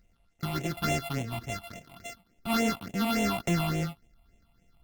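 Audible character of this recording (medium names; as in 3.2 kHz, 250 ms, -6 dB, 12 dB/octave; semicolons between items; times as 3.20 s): a buzz of ramps at a fixed pitch in blocks of 64 samples; phasing stages 6, 3.5 Hz, lowest notch 420–1300 Hz; Opus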